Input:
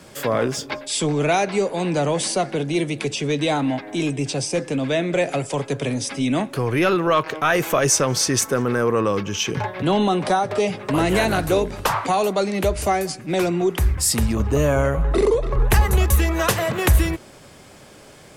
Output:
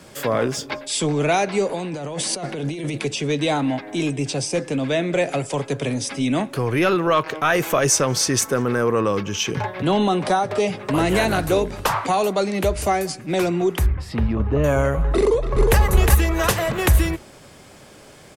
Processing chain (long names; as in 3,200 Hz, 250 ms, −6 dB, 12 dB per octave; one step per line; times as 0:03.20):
0:01.69–0:02.98: compressor whose output falls as the input rises −27 dBFS, ratio −1
0:13.86–0:14.64: high-frequency loss of the air 370 metres
0:15.20–0:15.78: delay throw 360 ms, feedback 30%, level −2.5 dB